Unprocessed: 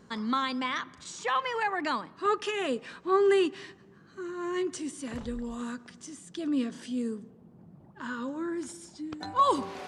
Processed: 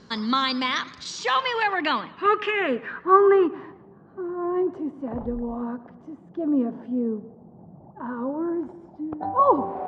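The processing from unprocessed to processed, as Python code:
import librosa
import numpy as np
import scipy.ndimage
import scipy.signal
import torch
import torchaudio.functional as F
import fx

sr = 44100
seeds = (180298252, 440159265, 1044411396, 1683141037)

y = fx.filter_sweep_lowpass(x, sr, from_hz=4800.0, to_hz=780.0, start_s=1.26, end_s=3.97, q=2.6)
y = fx.echo_warbled(y, sr, ms=115, feedback_pct=34, rate_hz=2.8, cents=180, wet_db=-20.5)
y = y * 10.0 ** (5.0 / 20.0)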